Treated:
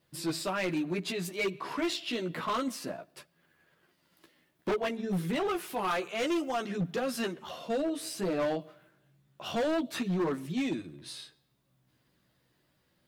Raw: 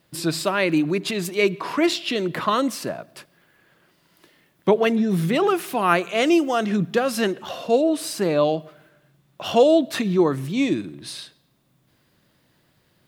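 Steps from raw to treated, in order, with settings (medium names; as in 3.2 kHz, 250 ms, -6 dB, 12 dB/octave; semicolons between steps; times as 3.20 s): chorus voices 2, 0.29 Hz, delay 14 ms, depth 2.6 ms; 2.93–5.07 s: transient shaper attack +5 dB, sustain -3 dB; overload inside the chain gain 20 dB; trim -6 dB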